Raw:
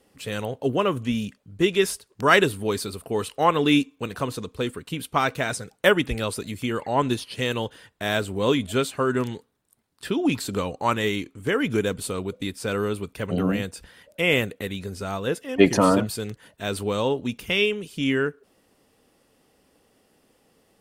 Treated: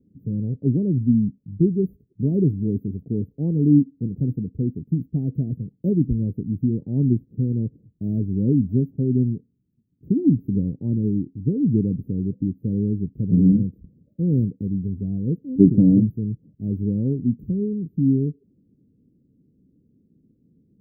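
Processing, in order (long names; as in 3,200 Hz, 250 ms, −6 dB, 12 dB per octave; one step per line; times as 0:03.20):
inverse Chebyshev band-stop filter 1,300–8,800 Hz, stop band 70 dB
parametric band 150 Hz +14.5 dB 2.3 octaves
level −3 dB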